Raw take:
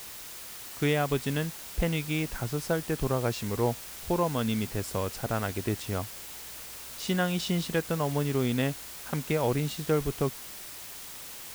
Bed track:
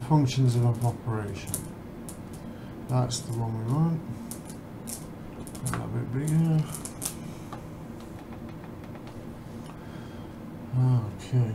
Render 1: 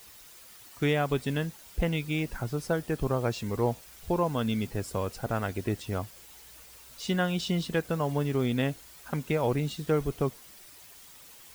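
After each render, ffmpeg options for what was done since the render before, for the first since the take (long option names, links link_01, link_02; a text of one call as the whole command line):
ffmpeg -i in.wav -af "afftdn=noise_reduction=10:noise_floor=-43" out.wav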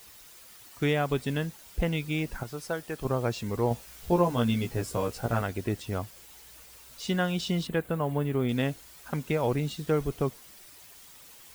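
ffmpeg -i in.wav -filter_complex "[0:a]asettb=1/sr,asplit=3[link_01][link_02][link_03];[link_01]atrim=end=2.434[link_04];[link_02]atrim=start=2.43:end=3.05,asetpts=PTS-STARTPTS,afade=type=in:duration=0.004:curve=qsin,afade=type=out:start_time=0.616:duration=0.004:curve=qsin,lowshelf=frequency=400:gain=-10[link_05];[link_03]atrim=start=3.046[link_06];[link_04][link_05]acrossfade=duration=0.004:curve1=hsin:curve2=qsin[link_07];[link_07][link_06]acrossfade=duration=0.004:curve1=qsin:curve2=hsin,asettb=1/sr,asplit=3[link_08][link_09][link_10];[link_08]atrim=end=3.694[link_11];[link_09]atrim=start=3.69:end=5.42,asetpts=PTS-STARTPTS,afade=type=in:duration=0.004:curve=qsin,afade=type=out:start_time=1.726:duration=0.004:curve=qsin,asplit=2[link_12][link_13];[link_13]adelay=17,volume=-2dB[link_14];[link_12][link_14]amix=inputs=2:normalize=0,atrim=end_sample=76293[link_15];[link_10]atrim=start=5.416[link_16];[link_11][link_15]acrossfade=duration=0.004:curve1=hsin:curve2=qsin[link_17];[link_17][link_16]acrossfade=duration=0.004:curve1=qsin:curve2=hsin,asettb=1/sr,asplit=3[link_18][link_19][link_20];[link_18]atrim=end=7.674[link_21];[link_19]atrim=start=7.67:end=8.49,asetpts=PTS-STARTPTS,afade=type=in:duration=0.004:curve=qsin,afade=type=out:start_time=0.816:duration=0.004:curve=qsin,equalizer=frequency=5500:width=1.4:gain=-13.5[link_22];[link_20]atrim=start=8.486[link_23];[link_21][link_22]acrossfade=duration=0.004:curve1=hsin:curve2=qsin[link_24];[link_24][link_23]acrossfade=duration=0.004:curve1=qsin:curve2=hsin" out.wav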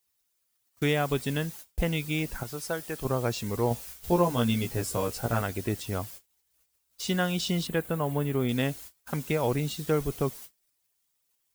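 ffmpeg -i in.wav -af "agate=range=-31dB:threshold=-46dB:ratio=16:detection=peak,highshelf=frequency=5100:gain=8" out.wav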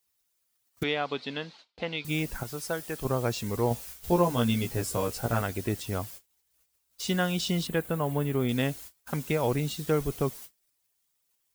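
ffmpeg -i in.wav -filter_complex "[0:a]asettb=1/sr,asplit=3[link_01][link_02][link_03];[link_01]atrim=end=0.834[link_04];[link_02]atrim=start=0.83:end=2.05,asetpts=PTS-STARTPTS,afade=type=in:duration=0.004:curve=qsin,afade=type=out:start_time=1.216:duration=0.004:curve=qsin,highpass=320,equalizer=frequency=370:width_type=q:width=4:gain=-6,equalizer=frequency=590:width_type=q:width=4:gain=-3,equalizer=frequency=1700:width_type=q:width=4:gain=-4,equalizer=frequency=4200:width_type=q:width=4:gain=8,lowpass=frequency=4300:width=0.5412,lowpass=frequency=4300:width=1.3066[link_05];[link_03]atrim=start=2.046[link_06];[link_04][link_05]acrossfade=duration=0.004:curve1=hsin:curve2=qsin[link_07];[link_07][link_06]acrossfade=duration=0.004:curve1=qsin:curve2=hsin" out.wav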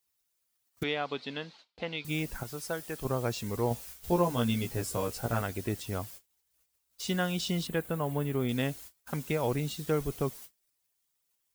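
ffmpeg -i in.wav -af "volume=-3dB" out.wav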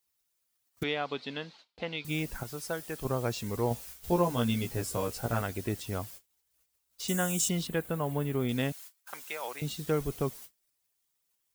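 ffmpeg -i in.wav -filter_complex "[0:a]asettb=1/sr,asplit=3[link_01][link_02][link_03];[link_01]atrim=end=7.084[link_04];[link_02]atrim=start=7.08:end=7.49,asetpts=PTS-STARTPTS,afade=type=in:duration=0.004:curve=qsin,afade=type=out:start_time=0.406:duration=0.004:curve=qsin,highshelf=frequency=5700:width_type=q:width=3:gain=9.5[link_05];[link_03]atrim=start=7.486[link_06];[link_04][link_05]acrossfade=duration=0.004:curve1=hsin:curve2=qsin[link_07];[link_07][link_06]acrossfade=duration=0.004:curve1=qsin:curve2=hsin,asettb=1/sr,asplit=3[link_08][link_09][link_10];[link_08]atrim=end=8.724[link_11];[link_09]atrim=start=8.72:end=9.62,asetpts=PTS-STARTPTS,afade=type=in:duration=0.004:curve=qsin,afade=type=out:start_time=0.896:duration=0.004:curve=qsin,highpass=900[link_12];[link_10]atrim=start=9.616[link_13];[link_11][link_12]acrossfade=duration=0.004:curve1=hsin:curve2=qsin[link_14];[link_14][link_13]acrossfade=duration=0.004:curve1=qsin:curve2=hsin" out.wav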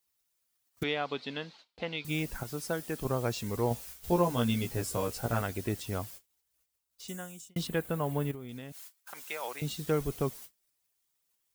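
ffmpeg -i in.wav -filter_complex "[0:a]asettb=1/sr,asplit=3[link_01][link_02][link_03];[link_01]atrim=end=2.484[link_04];[link_02]atrim=start=2.48:end=3.04,asetpts=PTS-STARTPTS,afade=type=in:duration=0.004:curve=qsin,afade=type=out:start_time=0.556:duration=0.004:curve=qsin,equalizer=frequency=230:width=1.1:gain=6.5[link_05];[link_03]atrim=start=3.036[link_06];[link_04][link_05]acrossfade=duration=0.004:curve1=hsin:curve2=qsin[link_07];[link_07][link_06]acrossfade=duration=0.004:curve1=qsin:curve2=hsin,asettb=1/sr,asplit=3[link_08][link_09][link_10];[link_08]atrim=end=8.314[link_11];[link_09]atrim=start=8.31:end=9.23,asetpts=PTS-STARTPTS,afade=type=in:duration=0.004:curve=qsin,afade=type=out:start_time=0.916:duration=0.004:curve=qsin,acompressor=threshold=-38dB:ratio=12:attack=3.2:release=140:knee=1:detection=peak[link_12];[link_10]atrim=start=9.226[link_13];[link_11][link_12]acrossfade=duration=0.004:curve1=hsin:curve2=qsin[link_14];[link_14][link_13]acrossfade=duration=0.004:curve1=qsin:curve2=hsin,asplit=2[link_15][link_16];[link_15]atrim=end=7.56,asetpts=PTS-STARTPTS,afade=type=out:start_time=6.12:duration=1.44[link_17];[link_16]atrim=start=7.56,asetpts=PTS-STARTPTS,afade=type=in:duration=0.004:curve=hsin[link_18];[link_17][link_18]concat=n=2:v=0:a=1" out.wav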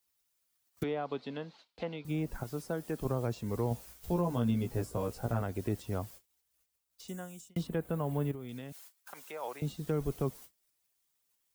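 ffmpeg -i in.wav -filter_complex "[0:a]acrossover=split=240|1200[link_01][link_02][link_03];[link_02]alimiter=level_in=3dB:limit=-24dB:level=0:latency=1,volume=-3dB[link_04];[link_03]acompressor=threshold=-50dB:ratio=6[link_05];[link_01][link_04][link_05]amix=inputs=3:normalize=0" out.wav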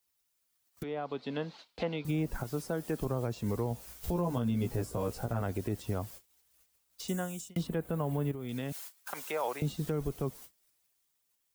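ffmpeg -i in.wav -af "alimiter=level_in=7dB:limit=-24dB:level=0:latency=1:release=414,volume=-7dB,dynaudnorm=framelen=170:gausssize=13:maxgain=8.5dB" out.wav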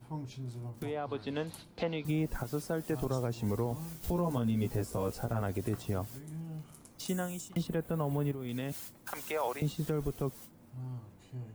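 ffmpeg -i in.wav -i bed.wav -filter_complex "[1:a]volume=-18.5dB[link_01];[0:a][link_01]amix=inputs=2:normalize=0" out.wav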